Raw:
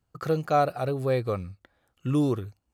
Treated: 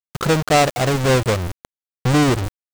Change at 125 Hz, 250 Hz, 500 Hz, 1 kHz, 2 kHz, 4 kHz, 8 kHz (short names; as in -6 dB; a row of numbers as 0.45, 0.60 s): +10.0 dB, +8.5 dB, +7.5 dB, +8.0 dB, +16.5 dB, +20.0 dB, n/a